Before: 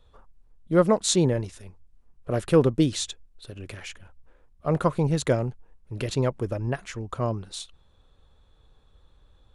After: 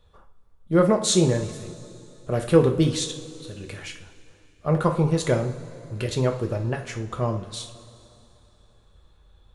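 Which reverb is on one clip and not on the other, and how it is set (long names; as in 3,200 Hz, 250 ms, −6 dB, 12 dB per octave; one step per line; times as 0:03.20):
coupled-rooms reverb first 0.37 s, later 2.9 s, from −18 dB, DRR 2.5 dB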